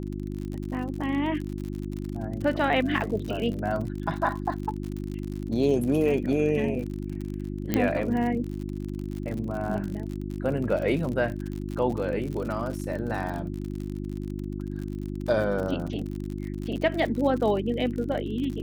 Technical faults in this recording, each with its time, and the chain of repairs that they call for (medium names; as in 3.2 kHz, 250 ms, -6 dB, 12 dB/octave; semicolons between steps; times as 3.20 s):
crackle 56 per s -32 dBFS
hum 50 Hz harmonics 7 -33 dBFS
7.74 s: pop -10 dBFS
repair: de-click; de-hum 50 Hz, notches 7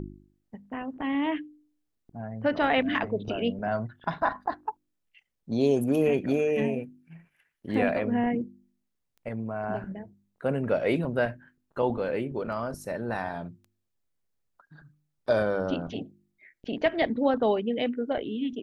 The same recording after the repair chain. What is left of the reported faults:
7.74 s: pop